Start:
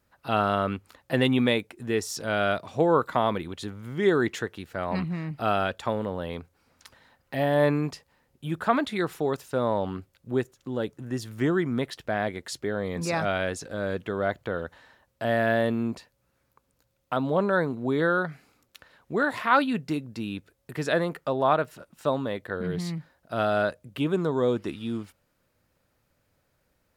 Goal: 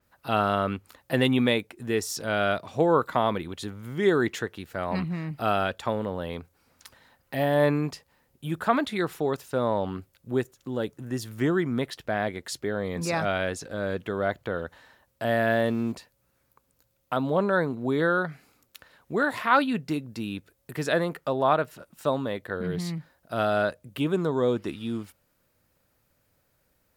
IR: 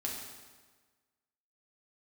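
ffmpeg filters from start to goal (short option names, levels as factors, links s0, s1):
-filter_complex "[0:a]highshelf=f=10000:g=9.5,asplit=3[s0][s1][s2];[s0]afade=t=out:st=15.5:d=0.02[s3];[s1]aeval=exprs='val(0)*gte(abs(val(0)),0.00596)':c=same,afade=t=in:st=15.5:d=0.02,afade=t=out:st=15.91:d=0.02[s4];[s2]afade=t=in:st=15.91:d=0.02[s5];[s3][s4][s5]amix=inputs=3:normalize=0,adynamicequalizer=threshold=0.00355:dfrequency=6200:dqfactor=0.7:tfrequency=6200:tqfactor=0.7:attack=5:release=100:ratio=0.375:range=3:mode=cutabove:tftype=highshelf"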